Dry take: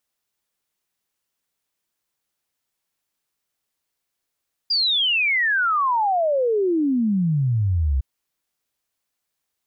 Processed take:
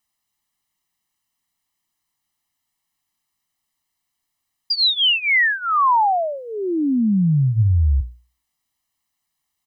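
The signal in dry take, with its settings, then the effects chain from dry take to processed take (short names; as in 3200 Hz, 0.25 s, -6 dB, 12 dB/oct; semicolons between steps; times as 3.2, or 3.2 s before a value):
log sweep 4900 Hz -> 63 Hz 3.31 s -17 dBFS
notches 60/120 Hz; comb 1 ms, depth 82%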